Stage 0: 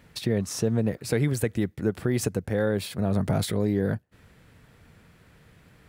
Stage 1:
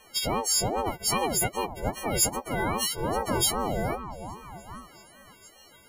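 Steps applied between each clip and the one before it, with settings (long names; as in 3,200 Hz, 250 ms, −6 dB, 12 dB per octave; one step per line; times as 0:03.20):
every partial snapped to a pitch grid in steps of 6 semitones
echo through a band-pass that steps 462 ms, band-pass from 320 Hz, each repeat 0.7 octaves, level −9 dB
ring modulator whose carrier an LFO sweeps 460 Hz, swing 50%, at 2.5 Hz
level −1 dB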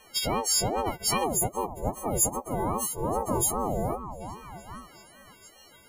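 gain on a spectral selection 0:01.24–0:04.21, 1,300–6,000 Hz −15 dB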